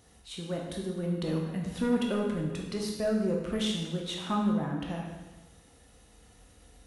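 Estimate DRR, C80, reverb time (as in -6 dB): -1.0 dB, 4.5 dB, 1.2 s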